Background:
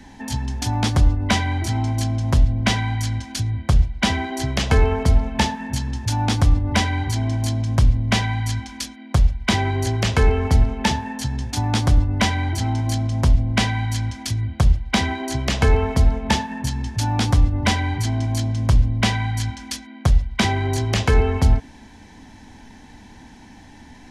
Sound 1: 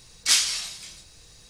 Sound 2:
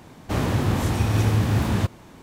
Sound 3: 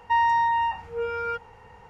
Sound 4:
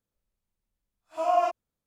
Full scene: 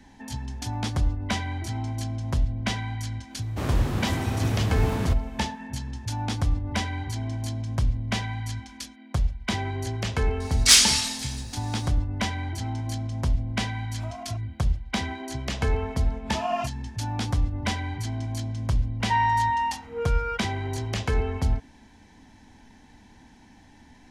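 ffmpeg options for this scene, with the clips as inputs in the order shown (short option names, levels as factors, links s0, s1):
-filter_complex "[4:a]asplit=2[s0][s1];[0:a]volume=0.376[s2];[1:a]acontrast=75[s3];[s0]acompressor=threshold=0.0126:ratio=6:attack=3.2:release=140:knee=1:detection=peak[s4];[s1]equalizer=f=3000:t=o:w=1.6:g=11.5[s5];[2:a]atrim=end=2.22,asetpts=PTS-STARTPTS,volume=0.531,afade=t=in:d=0.1,afade=t=out:st=2.12:d=0.1,adelay=3270[s6];[s3]atrim=end=1.49,asetpts=PTS-STARTPTS,volume=0.891,afade=t=in:d=0.004:c=hsin,afade=t=out:st=1.486:d=0.004:c=hsin,adelay=10400[s7];[s4]atrim=end=1.86,asetpts=PTS-STARTPTS,volume=0.944,afade=t=in:d=0.004:c=hsin,afade=t=out:st=1.856:d=0.004:c=hsin,adelay=12860[s8];[s5]atrim=end=1.86,asetpts=PTS-STARTPTS,volume=0.501,afade=t=in:d=0.004:c=hsin,afade=t=out:st=1.856:d=0.004:c=hsin,adelay=15160[s9];[3:a]atrim=end=1.89,asetpts=PTS-STARTPTS,volume=0.841,afade=t=in:d=0.004:c=hsin,afade=t=out:st=1.886:d=0.004:c=hsin,adelay=19000[s10];[s2][s6][s7][s8][s9][s10]amix=inputs=6:normalize=0"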